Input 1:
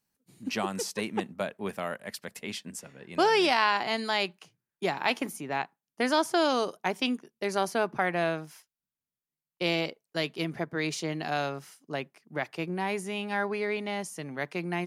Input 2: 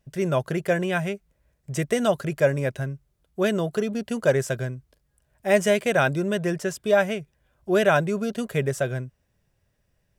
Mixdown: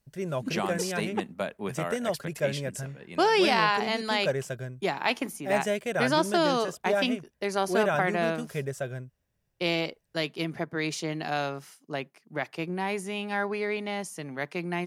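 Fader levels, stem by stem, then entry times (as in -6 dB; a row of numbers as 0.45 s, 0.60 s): +0.5 dB, -8.0 dB; 0.00 s, 0.00 s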